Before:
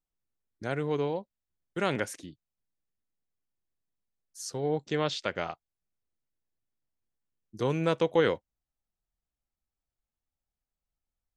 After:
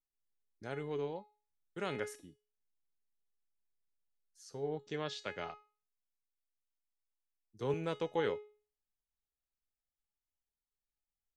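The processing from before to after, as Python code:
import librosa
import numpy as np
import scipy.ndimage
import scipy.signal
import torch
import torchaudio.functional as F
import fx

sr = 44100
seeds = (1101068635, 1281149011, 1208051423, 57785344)

y = fx.lowpass(x, sr, hz=fx.line((2.17, 1400.0), (4.7, 3100.0)), slope=6, at=(2.17, 4.7), fade=0.02)
y = fx.comb_fb(y, sr, f0_hz=420.0, decay_s=0.38, harmonics='all', damping=0.0, mix_pct=80)
y = fx.band_widen(y, sr, depth_pct=40, at=(5.23, 7.74))
y = y * librosa.db_to_amplitude(2.5)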